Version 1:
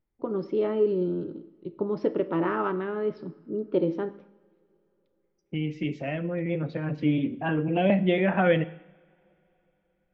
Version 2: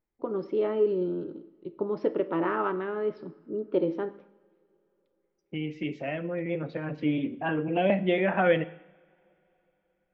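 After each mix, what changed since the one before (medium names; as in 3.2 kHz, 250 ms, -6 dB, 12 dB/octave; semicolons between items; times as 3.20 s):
master: add tone controls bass -7 dB, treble -5 dB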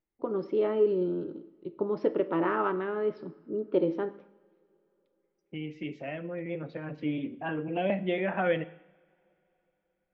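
second voice -4.5 dB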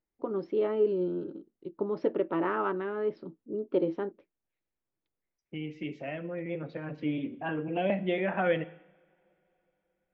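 first voice: send off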